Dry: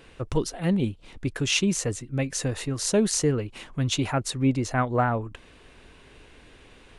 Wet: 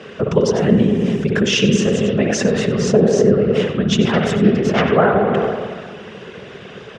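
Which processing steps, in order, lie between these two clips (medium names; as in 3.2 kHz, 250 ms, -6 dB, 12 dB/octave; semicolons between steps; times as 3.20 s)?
4.03–4.86 s: self-modulated delay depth 0.28 ms; delay 94 ms -13 dB; 0.58–1.25 s: added noise violet -47 dBFS; 2.72–3.42 s: treble shelf 2 kHz -11 dB; reverberation RT60 1.6 s, pre-delay 55 ms, DRR 4.5 dB; in parallel at -0.5 dB: compressor with a negative ratio -32 dBFS, ratio -1; on the sum: whisper effect; cabinet simulation 160–5600 Hz, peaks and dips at 200 Hz +6 dB, 300 Hz -10 dB, 420 Hz +8 dB, 900 Hz -6 dB, 2.3 kHz -6 dB, 4.2 kHz -10 dB; loudness maximiser +8.5 dB; trim -1 dB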